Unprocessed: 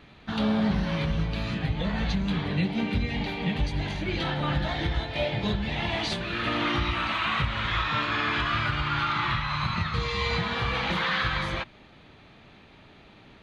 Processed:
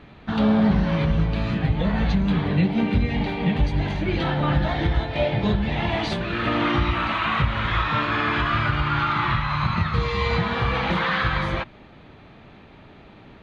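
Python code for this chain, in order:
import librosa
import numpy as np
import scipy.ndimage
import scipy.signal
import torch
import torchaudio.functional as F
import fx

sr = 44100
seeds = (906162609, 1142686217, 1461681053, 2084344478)

y = fx.high_shelf(x, sr, hz=2800.0, db=-11.5)
y = y * librosa.db_to_amplitude(6.5)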